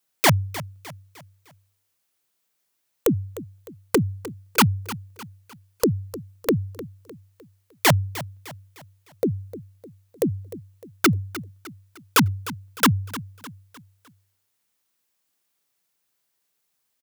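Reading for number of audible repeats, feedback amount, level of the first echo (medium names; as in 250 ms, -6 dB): 3, 43%, -15.5 dB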